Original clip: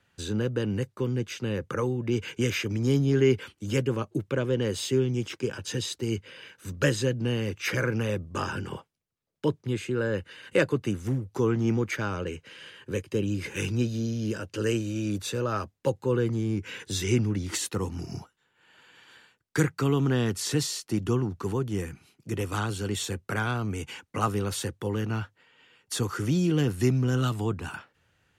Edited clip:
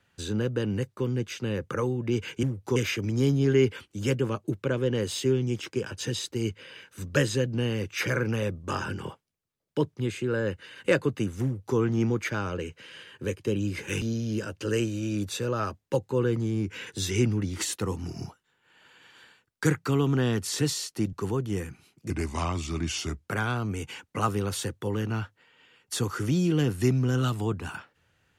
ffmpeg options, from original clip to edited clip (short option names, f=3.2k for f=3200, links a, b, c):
-filter_complex "[0:a]asplit=7[a][b][c][d][e][f][g];[a]atrim=end=2.432[h];[b]atrim=start=11.108:end=11.442[i];[c]atrim=start=2.428:end=13.692[j];[d]atrim=start=13.948:end=21.062[k];[e]atrim=start=21.348:end=22.324[l];[f]atrim=start=22.32:end=23.28,asetpts=PTS-STARTPTS,asetrate=35721,aresample=44100[m];[g]atrim=start=23.276[n];[h][i]acrossfade=d=0.004:c1=hsin:c2=hsin[o];[o][j]acrossfade=d=0.004:c1=hsin:c2=hsin[p];[p][k]acrossfade=d=0.004:c1=hsin:c2=hsin[q];[q][l]acrossfade=d=0.004:c1=hsin:c2=hsin[r];[r][m]acrossfade=d=0.004:c1=hsin:c2=hsin[s];[s][n]acrossfade=d=0.004:c1=hsin:c2=hsin"